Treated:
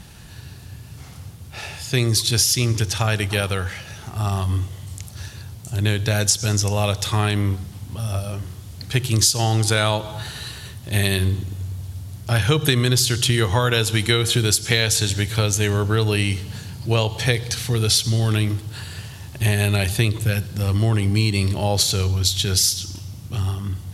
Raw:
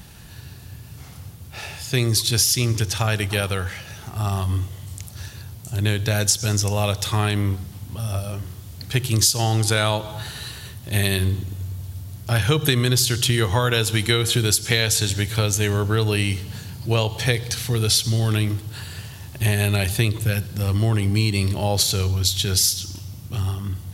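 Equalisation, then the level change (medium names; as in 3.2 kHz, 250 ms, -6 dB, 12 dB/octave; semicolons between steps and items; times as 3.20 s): low-pass 12 kHz 12 dB/octave; +1.0 dB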